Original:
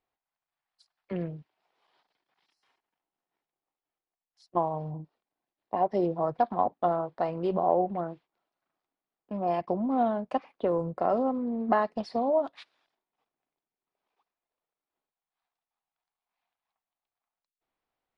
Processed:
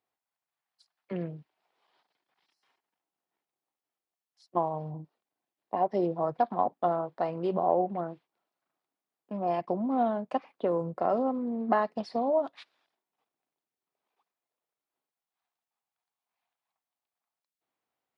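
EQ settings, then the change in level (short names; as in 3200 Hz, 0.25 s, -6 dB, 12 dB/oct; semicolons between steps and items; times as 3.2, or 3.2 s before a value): HPF 110 Hz; -1.0 dB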